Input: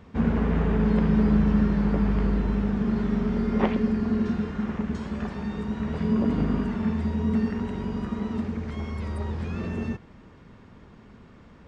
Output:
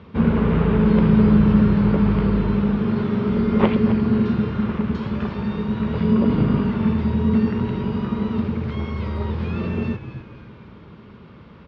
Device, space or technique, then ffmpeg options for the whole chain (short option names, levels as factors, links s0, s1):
frequency-shifting delay pedal into a guitar cabinet: -filter_complex "[0:a]asettb=1/sr,asplit=3[s0][s1][s2];[s0]atrim=end=2.764[s3];[s1]atrim=start=2.76:end=3.28,asetpts=PTS-STARTPTS,afade=t=in:d=0.004:c=qsin,afade=t=out:st=0.516:d=0.004:c=qsin,highpass=210[s4];[s2]atrim=start=3.276[s5];[s3][s4]acrossfade=d=0.004:c1=hsin:c2=qsin[s6];[s6][s5]acrossfade=d=0.004:c1=qsin:c2=hsin,asplit=6[s7][s8][s9][s10][s11][s12];[s8]adelay=261,afreqshift=-99,volume=0.282[s13];[s9]adelay=522,afreqshift=-198,volume=0.138[s14];[s10]adelay=783,afreqshift=-297,volume=0.0676[s15];[s11]adelay=1044,afreqshift=-396,volume=0.0331[s16];[s12]adelay=1305,afreqshift=-495,volume=0.0162[s17];[s7][s13][s14][s15][s16][s17]amix=inputs=6:normalize=0,highpass=78,equalizer=f=270:t=q:w=4:g=-5,equalizer=f=730:t=q:w=4:g=-7,equalizer=f=1800:t=q:w=4:g=-6,lowpass=f=4300:w=0.5412,lowpass=f=4300:w=1.3066,volume=2.37"